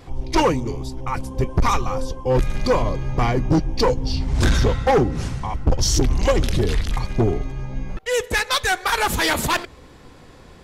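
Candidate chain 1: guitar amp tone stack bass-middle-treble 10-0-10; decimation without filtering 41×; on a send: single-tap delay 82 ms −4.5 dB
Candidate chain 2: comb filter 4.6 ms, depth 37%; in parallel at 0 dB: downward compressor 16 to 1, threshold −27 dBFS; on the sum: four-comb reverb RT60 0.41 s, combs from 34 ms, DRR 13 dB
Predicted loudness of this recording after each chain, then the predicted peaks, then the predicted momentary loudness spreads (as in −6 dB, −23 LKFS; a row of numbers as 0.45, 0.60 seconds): −30.0, −19.0 LKFS; −9.5, −5.5 dBFS; 12, 8 LU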